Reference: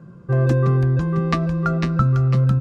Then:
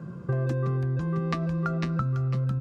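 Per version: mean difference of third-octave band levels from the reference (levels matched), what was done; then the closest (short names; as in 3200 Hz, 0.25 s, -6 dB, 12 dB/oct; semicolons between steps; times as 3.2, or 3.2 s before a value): 1.5 dB: HPF 62 Hz; compressor 5:1, threshold -30 dBFS, peak gain reduction 15 dB; gain +3.5 dB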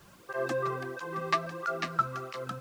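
10.0 dB: HPF 580 Hz 12 dB/oct; added noise pink -55 dBFS; tape flanging out of phase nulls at 1.5 Hz, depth 4.1 ms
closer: first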